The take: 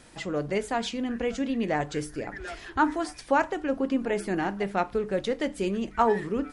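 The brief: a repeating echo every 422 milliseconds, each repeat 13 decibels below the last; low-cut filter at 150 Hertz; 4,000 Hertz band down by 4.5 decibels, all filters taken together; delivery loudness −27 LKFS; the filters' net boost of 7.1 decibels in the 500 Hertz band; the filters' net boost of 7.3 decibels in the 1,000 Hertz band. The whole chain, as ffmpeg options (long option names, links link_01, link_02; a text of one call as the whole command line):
ffmpeg -i in.wav -af "highpass=150,equalizer=frequency=500:width_type=o:gain=7,equalizer=frequency=1000:width_type=o:gain=7,equalizer=frequency=4000:width_type=o:gain=-7,aecho=1:1:422|844|1266:0.224|0.0493|0.0108,volume=-4.5dB" out.wav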